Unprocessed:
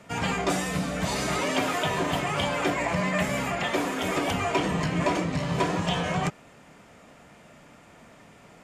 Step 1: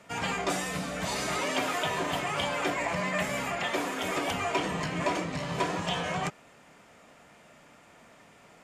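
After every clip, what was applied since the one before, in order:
low-shelf EQ 310 Hz −7 dB
level −2 dB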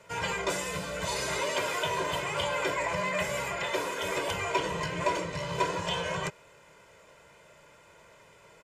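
comb filter 2 ms, depth 77%
level −2 dB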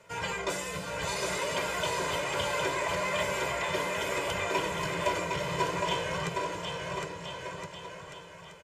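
bouncing-ball delay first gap 760 ms, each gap 0.8×, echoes 5
level −2 dB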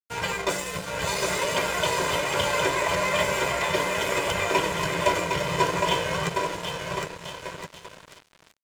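dead-zone distortion −42 dBFS
level +8 dB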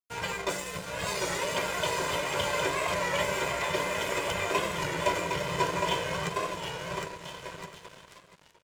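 single-tap delay 702 ms −14.5 dB
wow of a warped record 33 1/3 rpm, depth 100 cents
level −5 dB

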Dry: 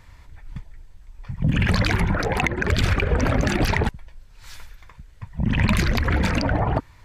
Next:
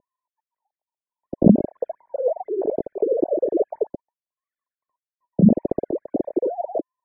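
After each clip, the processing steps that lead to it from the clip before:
three sine waves on the formant tracks
elliptic low-pass filter 620 Hz, stop band 50 dB
level +2.5 dB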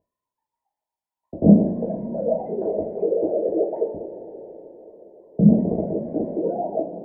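coupled-rooms reverb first 0.35 s, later 4.7 s, from −18 dB, DRR −5 dB
level −6 dB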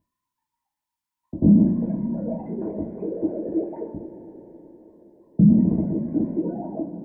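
flat-topped bell 560 Hz −15.5 dB 1.2 octaves
boost into a limiter +10.5 dB
level −6 dB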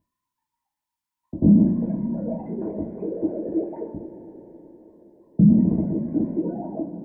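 no processing that can be heard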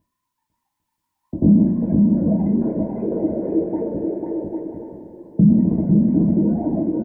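bouncing-ball delay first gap 500 ms, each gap 0.6×, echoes 5
in parallel at −2 dB: downward compressor, threshold −25 dBFS, peak gain reduction 14 dB

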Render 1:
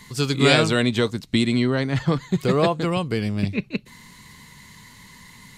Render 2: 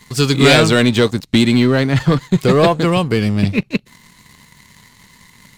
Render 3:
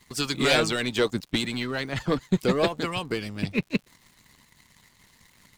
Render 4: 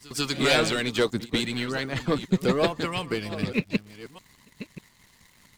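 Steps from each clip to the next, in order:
leveller curve on the samples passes 2; level +1 dB
harmonic and percussive parts rebalanced harmonic −14 dB; surface crackle 130 per second −38 dBFS; level −7 dB
delay that plays each chunk backwards 598 ms, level −13 dB; echo ahead of the sound 143 ms −20.5 dB

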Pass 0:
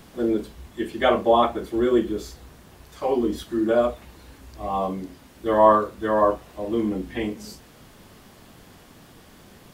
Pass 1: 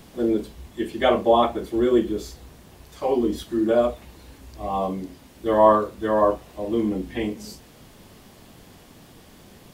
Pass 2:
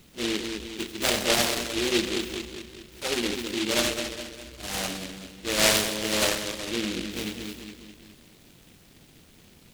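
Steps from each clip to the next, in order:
parametric band 1,400 Hz −4 dB 0.9 octaves; level +1 dB
echo with a time of its own for lows and highs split 610 Hz, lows 205 ms, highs 89 ms, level −5.5 dB; short delay modulated by noise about 2,900 Hz, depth 0.3 ms; level −7 dB

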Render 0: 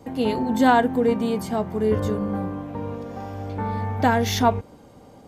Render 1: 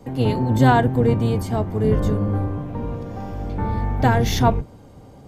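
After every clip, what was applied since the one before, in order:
sub-octave generator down 1 octave, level +4 dB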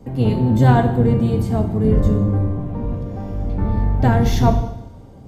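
low-shelf EQ 390 Hz +9 dB
coupled-rooms reverb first 0.87 s, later 2.5 s, from −26 dB, DRR 4.5 dB
level −4.5 dB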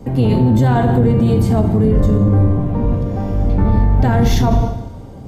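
boost into a limiter +12 dB
level −4.5 dB

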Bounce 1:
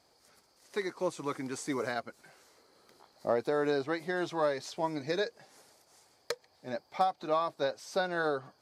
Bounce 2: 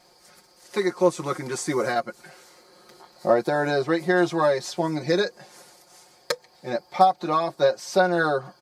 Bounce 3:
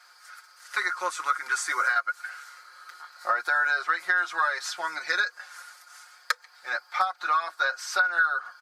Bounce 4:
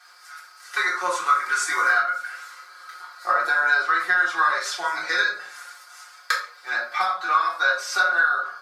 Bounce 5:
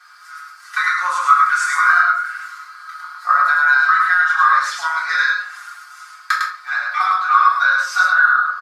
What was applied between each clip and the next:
dynamic equaliser 2,800 Hz, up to −4 dB, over −49 dBFS, Q 1.1; comb filter 5.6 ms, depth 91%; level +8 dB
high-pass with resonance 1,400 Hz, resonance Q 6.7; downward compressor 6 to 1, threshold −21 dBFS, peak gain reduction 12.5 dB
rectangular room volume 520 cubic metres, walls furnished, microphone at 3.6 metres
high-pass with resonance 1,200 Hz, resonance Q 2.5; on a send: single-tap delay 104 ms −3.5 dB; on the sum: level −1 dB

